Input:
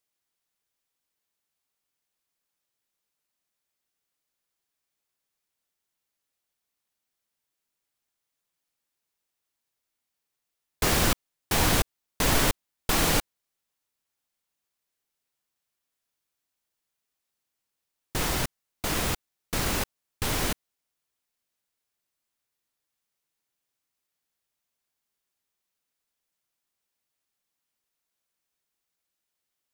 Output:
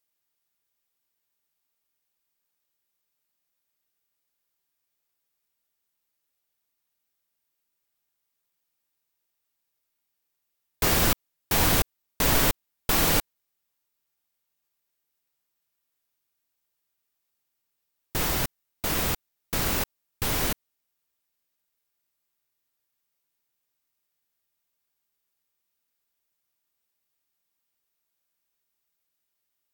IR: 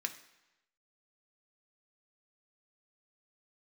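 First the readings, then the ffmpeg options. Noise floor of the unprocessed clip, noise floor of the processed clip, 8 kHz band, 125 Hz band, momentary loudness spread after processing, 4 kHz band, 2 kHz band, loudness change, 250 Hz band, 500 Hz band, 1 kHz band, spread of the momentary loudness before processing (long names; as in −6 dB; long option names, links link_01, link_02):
−84 dBFS, −80 dBFS, +0.5 dB, 0.0 dB, 12 LU, 0.0 dB, 0.0 dB, +2.0 dB, 0.0 dB, 0.0 dB, 0.0 dB, 12 LU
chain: -af "equalizer=frequency=16000:width=2.5:gain=14"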